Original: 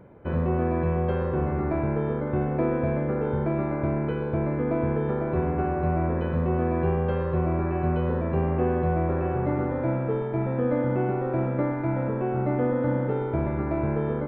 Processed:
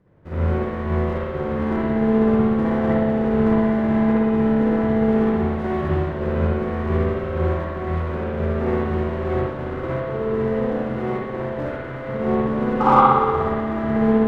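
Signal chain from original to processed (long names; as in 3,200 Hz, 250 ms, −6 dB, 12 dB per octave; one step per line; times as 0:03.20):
lower of the sound and its delayed copy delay 0.4 ms
shaped tremolo saw up 1.7 Hz, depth 45%
sound drawn into the spectrogram noise, 0:12.80–0:13.01, 770–1,600 Hz −20 dBFS
in parallel at −4.5 dB: soft clipping −26 dBFS, distortion −11 dB
on the sum: formants moved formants −3 semitones
spring reverb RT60 2 s, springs 59 ms, chirp 25 ms, DRR −8 dB
expander for the loud parts 1.5 to 1, over −32 dBFS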